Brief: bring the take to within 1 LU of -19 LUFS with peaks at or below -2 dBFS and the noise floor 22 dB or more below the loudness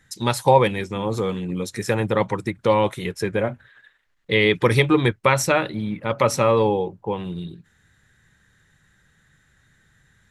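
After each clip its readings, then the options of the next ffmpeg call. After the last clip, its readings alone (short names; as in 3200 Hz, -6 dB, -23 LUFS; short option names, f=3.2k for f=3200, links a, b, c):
loudness -21.5 LUFS; peak -2.0 dBFS; loudness target -19.0 LUFS
-> -af "volume=2.5dB,alimiter=limit=-2dB:level=0:latency=1"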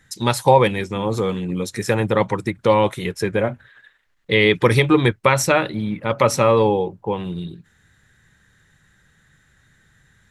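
loudness -19.0 LUFS; peak -2.0 dBFS; noise floor -60 dBFS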